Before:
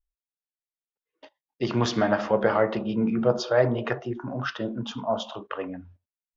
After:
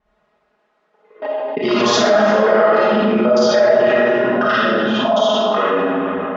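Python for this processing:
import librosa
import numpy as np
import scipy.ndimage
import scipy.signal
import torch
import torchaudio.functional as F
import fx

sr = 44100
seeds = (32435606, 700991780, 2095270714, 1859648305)

p1 = fx.local_reverse(x, sr, ms=58.0)
p2 = fx.env_lowpass(p1, sr, base_hz=990.0, full_db=-19.5)
p3 = scipy.signal.sosfilt(scipy.signal.bessel(2, 170.0, 'highpass', norm='mag', fs=sr, output='sos'), p2)
p4 = fx.low_shelf(p3, sr, hz=260.0, db=-10.5)
p5 = p4 + 0.67 * np.pad(p4, (int(4.8 * sr / 1000.0), 0))[:len(p4)]
p6 = fx.level_steps(p5, sr, step_db=11)
p7 = p5 + F.gain(torch.from_numpy(p6), -2.0).numpy()
p8 = fx.rev_freeverb(p7, sr, rt60_s=1.5, hf_ratio=0.8, predelay_ms=10, drr_db=-10.0)
p9 = fx.env_flatten(p8, sr, amount_pct=70)
y = F.gain(torch.from_numpy(p9), -7.5).numpy()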